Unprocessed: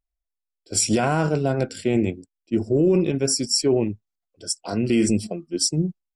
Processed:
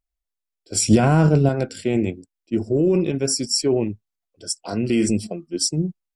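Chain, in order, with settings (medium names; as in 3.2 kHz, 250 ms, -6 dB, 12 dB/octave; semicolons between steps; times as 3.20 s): 0.88–1.49 s: bass shelf 280 Hz +11.5 dB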